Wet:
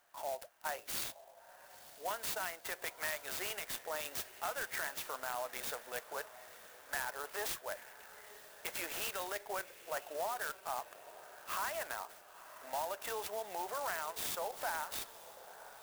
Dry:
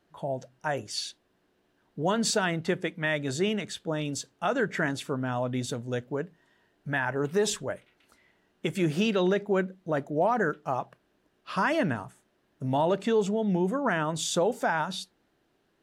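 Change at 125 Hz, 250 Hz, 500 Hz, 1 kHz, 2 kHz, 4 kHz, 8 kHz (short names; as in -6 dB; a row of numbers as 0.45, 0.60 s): -30.0, -28.5, -15.0, -9.0, -9.0, -9.0, -5.5 dB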